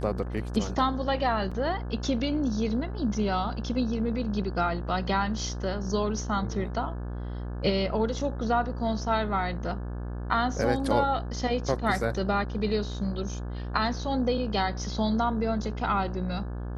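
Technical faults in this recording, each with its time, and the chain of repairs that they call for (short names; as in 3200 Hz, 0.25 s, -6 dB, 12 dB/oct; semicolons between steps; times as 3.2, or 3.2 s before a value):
buzz 60 Hz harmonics 29 -34 dBFS
1.51–1.52 gap 5.4 ms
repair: de-hum 60 Hz, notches 29; interpolate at 1.51, 5.4 ms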